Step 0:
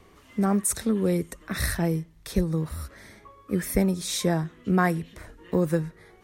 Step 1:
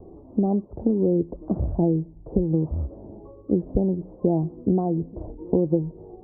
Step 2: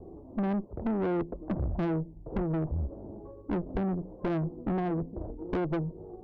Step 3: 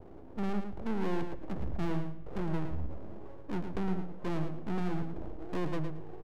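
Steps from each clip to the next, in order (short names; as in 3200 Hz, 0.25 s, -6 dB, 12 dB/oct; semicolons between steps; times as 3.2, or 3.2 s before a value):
compressor 10:1, threshold -28 dBFS, peak gain reduction 12 dB; steep low-pass 830 Hz 48 dB/oct; bell 330 Hz +7 dB 0.44 oct; gain +9 dB
tube stage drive 26 dB, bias 0.45
half-wave rectifier; feedback echo 0.11 s, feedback 18%, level -7.5 dB; on a send at -20.5 dB: reverb RT60 3.1 s, pre-delay 58 ms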